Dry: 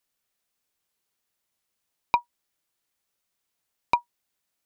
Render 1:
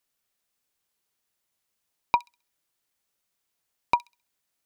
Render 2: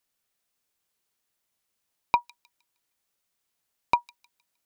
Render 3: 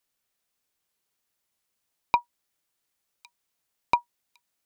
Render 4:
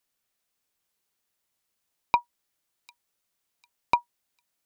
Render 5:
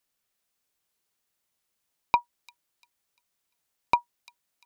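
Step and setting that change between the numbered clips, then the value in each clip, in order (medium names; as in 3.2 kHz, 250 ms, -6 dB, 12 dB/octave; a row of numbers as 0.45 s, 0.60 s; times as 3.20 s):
feedback echo behind a high-pass, time: 66 ms, 155 ms, 1108 ms, 749 ms, 346 ms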